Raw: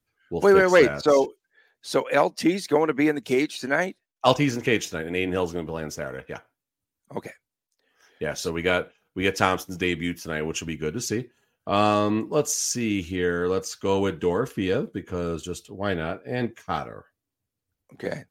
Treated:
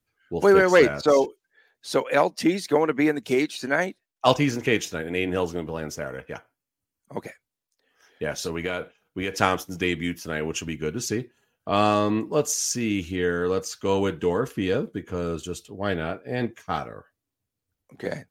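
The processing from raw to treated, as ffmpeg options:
-filter_complex "[0:a]asettb=1/sr,asplit=3[a][b][c];[a]atrim=end=5.984[d];[b]atrim=start=5.98:end=7.22,asetpts=PTS-STARTPTS,afade=t=in:d=0.004:c=qsin,afade=t=out:st=1.236:d=0.004:c=qsin,bandreject=f=3.7k:w=8.7[e];[c]atrim=start=7.216[f];[d][e]acrossfade=d=0.004:c1=hsin:c2=qsin[g];[g][f]acrossfade=d=0.004:c1=qsin:c2=hsin,asettb=1/sr,asplit=3[h][i][j];[h]atrim=end=8.464[k];[i]atrim=start=8.46:end=9.41,asetpts=PTS-STARTPTS,afade=t=in:d=0.004:c=qsin,afade=t=out:st=0.946:d=0.004:c=qsin,acompressor=threshold=-23dB:ratio=6:attack=3.2:release=140:knee=1:detection=peak[l];[j]atrim=start=9.406[m];[k][l]acrossfade=d=0.004:c1=hsin:c2=qsin[n];[n][m]acrossfade=d=0.004:c1=qsin:c2=hsin"

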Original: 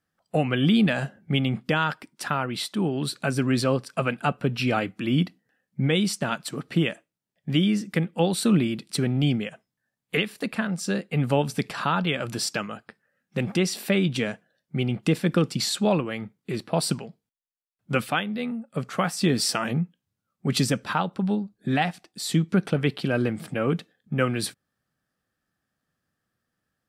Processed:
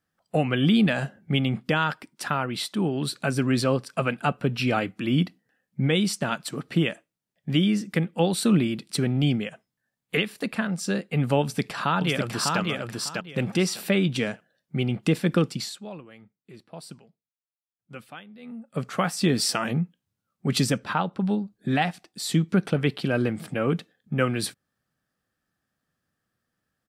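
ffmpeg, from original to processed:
-filter_complex "[0:a]asplit=2[a][b];[b]afade=t=in:st=11.41:d=0.01,afade=t=out:st=12.6:d=0.01,aecho=0:1:600|1200|1800:0.707946|0.141589|0.0283178[c];[a][c]amix=inputs=2:normalize=0,asettb=1/sr,asplit=3[d][e][f];[d]atrim=end=20.784[g];[e]atrim=start=20.78:end=21.2,asetpts=PTS-STARTPTS,afade=t=in:d=0.004:c=qsin,afade=t=out:st=0.416:d=0.004:c=qsin,highshelf=f=5.3k:g=-8[h];[f]atrim=start=21.196[i];[g][h]acrossfade=d=0.004:c1=hsin:c2=qsin[j];[j][i]acrossfade=d=0.004:c1=qsin:c2=hsin,asplit=3[k][l][m];[k]atrim=end=15.79,asetpts=PTS-STARTPTS,afade=t=out:st=15.41:d=0.38:silence=0.141254[n];[l]atrim=start=15.79:end=18.41,asetpts=PTS-STARTPTS,volume=-17dB[o];[m]atrim=start=18.41,asetpts=PTS-STARTPTS,afade=t=in:d=0.38:silence=0.141254[p];[n][o][p]concat=n=3:v=0:a=1"

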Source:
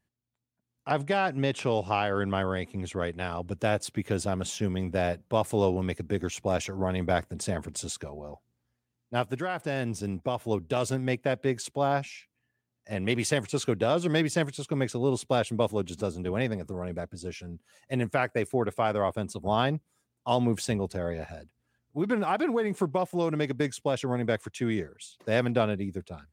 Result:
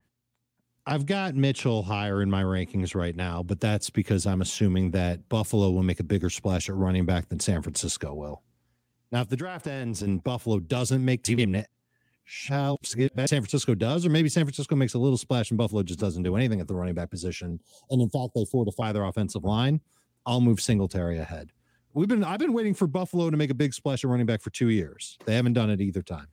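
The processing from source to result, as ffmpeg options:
-filter_complex "[0:a]asettb=1/sr,asplit=3[a][b][c];[a]atrim=end=9.354[d];[b]atrim=start=9.35:end=10.07,asetpts=PTS-STARTPTS,afade=t=in:d=0.004:c=qsin,afade=t=out:st=0.716:d=0.004:c=qsin,acompressor=threshold=-33dB:ratio=5:attack=3.2:release=140:knee=1:detection=peak[e];[c]atrim=start=10.066[f];[d][e]acrossfade=d=0.004:c1=hsin:c2=qsin[g];[g][f]acrossfade=d=0.004:c1=qsin:c2=hsin,asettb=1/sr,asplit=3[h][i][j];[h]atrim=end=17.514[k];[i]atrim=start=17.51:end=18.82,asetpts=PTS-STARTPTS,afade=t=in:d=0.004:c=qsin,afade=t=out:st=1.306:d=0.004:c=qsin,asuperstop=centerf=1700:order=20:qfactor=0.81[l];[j]atrim=start=18.816[m];[k][l]acrossfade=d=0.004:c1=hsin:c2=qsin[n];[n][m]acrossfade=d=0.004:c1=qsin:c2=hsin,asplit=3[o][p][q];[o]atrim=end=11.252[r];[p]atrim=start=11.248:end=13.272,asetpts=PTS-STARTPTS,areverse[s];[q]atrim=start=13.268[t];[r][s]acrossfade=d=0.004:c1=hsin:c2=hsin[u];[u][t]acrossfade=d=0.004:c1=hsin:c2=hsin,bandreject=f=660:w=12,acrossover=split=300|3000[v][w][x];[w]acompressor=threshold=-42dB:ratio=3[y];[v][y][x]amix=inputs=3:normalize=0,adynamicequalizer=threshold=0.00224:dfrequency=3100:dqfactor=0.7:tfrequency=3100:tqfactor=0.7:attack=5:release=100:ratio=0.375:range=2:mode=cutabove:tftype=highshelf,volume=7.5dB"

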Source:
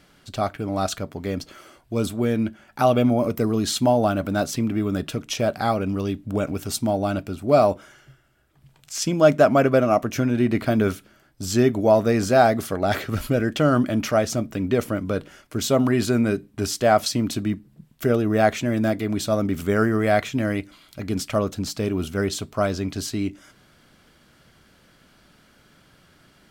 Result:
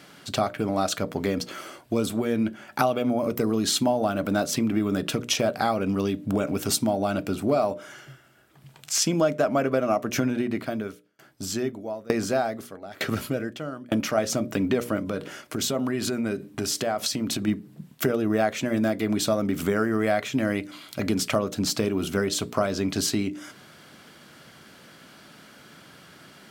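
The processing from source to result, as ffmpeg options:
-filter_complex "[0:a]asettb=1/sr,asplit=3[a][b][c];[a]atrim=end=10.284[d];[b]atrim=start=10.28:end=14.18,asetpts=PTS-STARTPTS,afade=t=in:d=0.004:c=qsin,afade=t=out:st=3.896:d=0.004:c=qsin,aeval=exprs='val(0)*pow(10,-30*if(lt(mod(1.1*n/s,1),2*abs(1.1)/1000),1-mod(1.1*n/s,1)/(2*abs(1.1)/1000),(mod(1.1*n/s,1)-2*abs(1.1)/1000)/(1-2*abs(1.1)/1000))/20)':c=same[e];[c]atrim=start=14.176[f];[d][e]acrossfade=d=0.004:c1=hsin:c2=qsin[g];[g][f]acrossfade=d=0.004:c1=qsin:c2=hsin,asplit=3[h][i][j];[h]afade=t=out:st=15.01:d=0.02[k];[i]acompressor=threshold=-30dB:ratio=5:attack=3.2:release=140:knee=1:detection=peak,afade=t=in:st=15.01:d=0.02,afade=t=out:st=17.47:d=0.02[l];[j]afade=t=in:st=17.47:d=0.02[m];[k][l][m]amix=inputs=3:normalize=0,highpass=140,acompressor=threshold=-28dB:ratio=5,bandreject=f=60:t=h:w=6,bandreject=f=120:t=h:w=6,bandreject=f=180:t=h:w=6,bandreject=f=240:t=h:w=6,bandreject=f=300:t=h:w=6,bandreject=f=360:t=h:w=6,bandreject=f=420:t=h:w=6,bandreject=f=480:t=h:w=6,bandreject=f=540:t=h:w=6,bandreject=f=600:t=h:w=6,volume=7.5dB"

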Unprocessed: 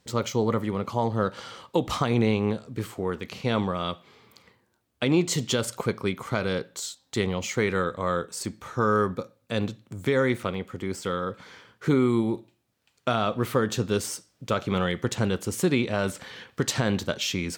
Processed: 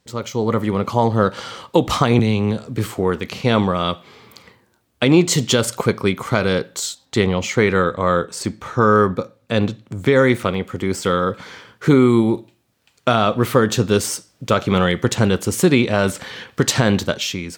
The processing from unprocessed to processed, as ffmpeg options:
-filter_complex "[0:a]asettb=1/sr,asplit=3[a][b][c];[a]atrim=end=2.194[d];[b]atrim=start=2.19:end=2.86,asetpts=PTS-STARTPTS,afade=t=in:d=0.004:c=qsin,afade=t=out:st=0.666:d=0.004:c=qsin,acrossover=split=210|3000[e][f][g];[f]acompressor=threshold=-30dB:ratio=6:attack=3.2:release=140:knee=2.83:detection=peak[h];[e][h][g]amix=inputs=3:normalize=0[i];[c]atrim=start=2.856[j];[d][i]acrossfade=d=0.004:c1=hsin:c2=qsin[k];[k][j]acrossfade=d=0.004:c1=qsin:c2=hsin,asettb=1/sr,asplit=3[l][m][n];[l]atrim=end=7.054[o];[m]atrim=start=7.05:end=10.16,asetpts=PTS-STARTPTS,afade=t=in:d=0.004:c=qsin,afade=t=out:st=3.106:d=0.004:c=qsin,highshelf=f=7.1k:g=-9[p];[n]atrim=start=10.156[q];[o][p]acrossfade=d=0.004:c1=hsin:c2=qsin[r];[r][q]acrossfade=d=0.004:c1=qsin:c2=hsin,dynaudnorm=f=110:g=9:m=11.5dB"

